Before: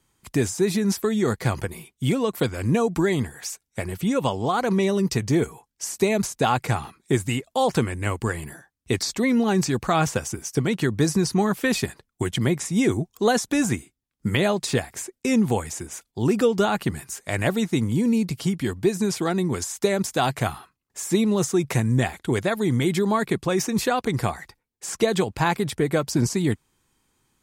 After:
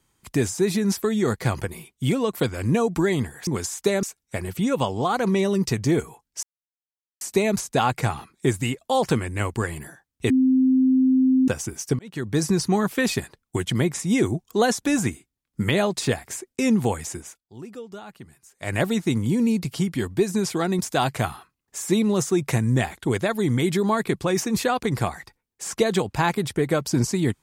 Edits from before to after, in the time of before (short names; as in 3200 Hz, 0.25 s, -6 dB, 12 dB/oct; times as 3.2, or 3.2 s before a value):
5.87 insert silence 0.78 s
8.96–10.14 bleep 260 Hz -14.5 dBFS
10.65–11.11 fade in
15.83–17.42 dip -18 dB, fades 0.23 s
19.45–20.01 move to 3.47